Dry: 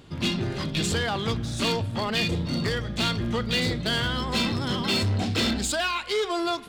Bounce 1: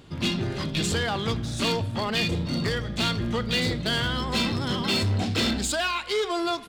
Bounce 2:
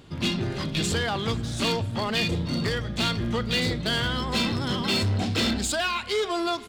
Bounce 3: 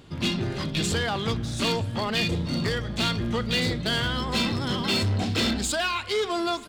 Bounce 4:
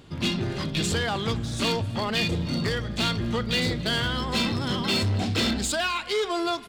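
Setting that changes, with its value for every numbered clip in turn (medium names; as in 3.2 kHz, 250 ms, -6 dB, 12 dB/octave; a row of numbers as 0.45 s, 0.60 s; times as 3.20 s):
feedback delay, time: 80 ms, 488 ms, 923 ms, 257 ms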